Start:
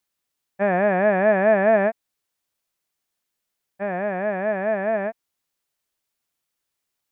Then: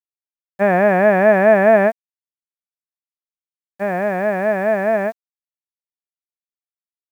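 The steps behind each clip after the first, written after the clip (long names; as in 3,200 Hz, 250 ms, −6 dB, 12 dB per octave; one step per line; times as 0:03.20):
bit reduction 9 bits
level +5.5 dB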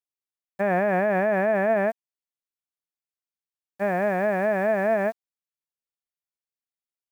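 brickwall limiter −10 dBFS, peak gain reduction 9 dB
level −3.5 dB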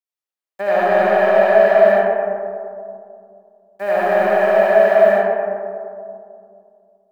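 high-pass filter 360 Hz 12 dB per octave
leveller curve on the samples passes 1
comb and all-pass reverb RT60 2.5 s, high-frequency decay 0.3×, pre-delay 30 ms, DRR −7 dB
level −1.5 dB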